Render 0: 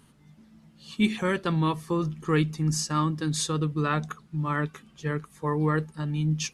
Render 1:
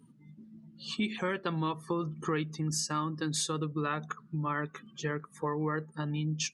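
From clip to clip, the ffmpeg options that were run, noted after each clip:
-af "highpass=f=250:p=1,acompressor=threshold=0.0112:ratio=3,afftdn=nr=24:nf=-56,volume=2.11"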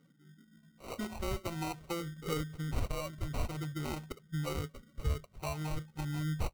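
-af "afftfilt=real='re*pow(10,17/40*sin(2*PI*(1.4*log(max(b,1)*sr/1024/100)/log(2)-(-0.48)*(pts-256)/sr)))':imag='im*pow(10,17/40*sin(2*PI*(1.4*log(max(b,1)*sr/1024/100)/log(2)-(-0.48)*(pts-256)/sr)))':win_size=1024:overlap=0.75,acrusher=samples=26:mix=1:aa=0.000001,asubboost=boost=6.5:cutoff=97,volume=0.398"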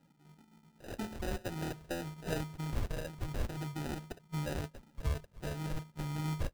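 -af "acrusher=samples=40:mix=1:aa=0.000001,volume=0.891"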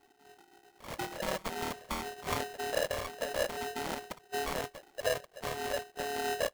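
-af "aeval=exprs='val(0)*sgn(sin(2*PI*570*n/s))':c=same,volume=1.19"

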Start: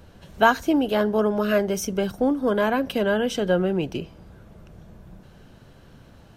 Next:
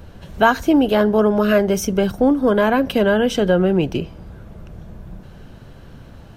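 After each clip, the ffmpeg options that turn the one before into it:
-filter_complex "[0:a]equalizer=f=8000:w=0.45:g=-3,asplit=2[s0][s1];[s1]alimiter=limit=0.188:level=0:latency=1:release=121,volume=1.12[s2];[s0][s2]amix=inputs=2:normalize=0,lowshelf=f=99:g=5.5"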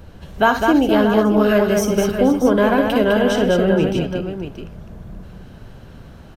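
-af "aecho=1:1:58|126|205|478|632:0.299|0.1|0.596|0.178|0.299,volume=0.891"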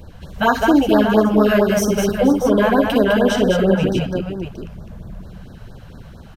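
-af "afftfilt=real='re*(1-between(b*sr/1024,280*pow(2700/280,0.5+0.5*sin(2*PI*4.4*pts/sr))/1.41,280*pow(2700/280,0.5+0.5*sin(2*PI*4.4*pts/sr))*1.41))':imag='im*(1-between(b*sr/1024,280*pow(2700/280,0.5+0.5*sin(2*PI*4.4*pts/sr))/1.41,280*pow(2700/280,0.5+0.5*sin(2*PI*4.4*pts/sr))*1.41))':win_size=1024:overlap=0.75,volume=1.19"

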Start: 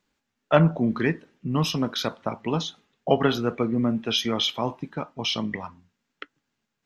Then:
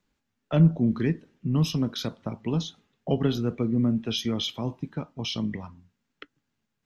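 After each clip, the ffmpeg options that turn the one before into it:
-filter_complex "[0:a]lowshelf=f=190:g=9.5,acrossover=split=460|3000[s0][s1][s2];[s1]acompressor=threshold=0.00794:ratio=2[s3];[s0][s3][s2]amix=inputs=3:normalize=0,volume=0.668"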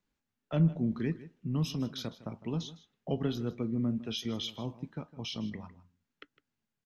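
-af "aecho=1:1:157:0.141,volume=0.422"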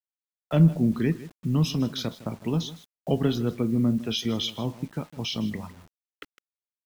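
-af "acrusher=bits=9:mix=0:aa=0.000001,volume=2.51"

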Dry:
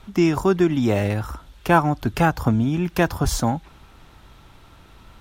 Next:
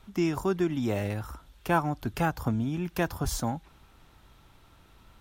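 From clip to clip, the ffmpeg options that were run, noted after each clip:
-af "highshelf=f=10000:g=6.5,volume=0.355"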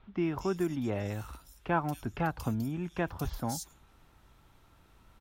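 -filter_complex "[0:a]acrossover=split=3600[s0][s1];[s1]adelay=230[s2];[s0][s2]amix=inputs=2:normalize=0,volume=0.631"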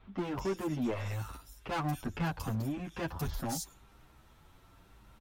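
-filter_complex "[0:a]volume=37.6,asoftclip=hard,volume=0.0266,asplit=2[s0][s1];[s1]adelay=8.6,afreqshift=0.87[s2];[s0][s2]amix=inputs=2:normalize=1,volume=1.68"

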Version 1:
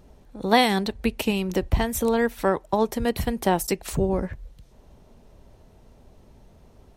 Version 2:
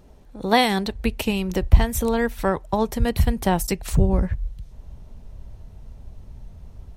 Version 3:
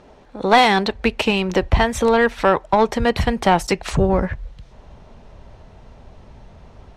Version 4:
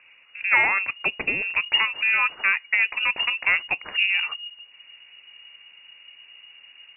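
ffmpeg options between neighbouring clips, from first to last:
-af "asubboost=boost=4.5:cutoff=150,volume=1.12"
-filter_complex "[0:a]lowpass=7500,asplit=2[s0][s1];[s1]highpass=f=720:p=1,volume=8.91,asoftclip=type=tanh:threshold=0.891[s2];[s0][s2]amix=inputs=2:normalize=0,lowpass=f=2200:p=1,volume=0.501"
-af "lowpass=f=2500:t=q:w=0.5098,lowpass=f=2500:t=q:w=0.6013,lowpass=f=2500:t=q:w=0.9,lowpass=f=2500:t=q:w=2.563,afreqshift=-2900,volume=0.501"

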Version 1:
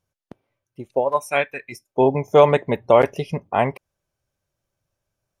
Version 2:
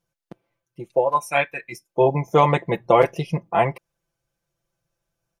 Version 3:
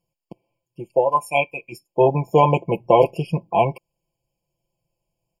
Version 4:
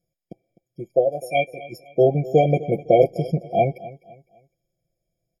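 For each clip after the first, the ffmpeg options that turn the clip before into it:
-af "aecho=1:1:5.9:0.85,volume=0.794"
-af "afftfilt=real='re*eq(mod(floor(b*sr/1024/1100),2),0)':imag='im*eq(mod(floor(b*sr/1024/1100),2),0)':win_size=1024:overlap=0.75,volume=1.19"
-af "asuperstop=centerf=890:order=20:qfactor=5.6,aecho=1:1:254|508|762:0.126|0.0428|0.0146,afftfilt=real='re*eq(mod(floor(b*sr/1024/790),2),0)':imag='im*eq(mod(floor(b*sr/1024/790),2),0)':win_size=1024:overlap=0.75"

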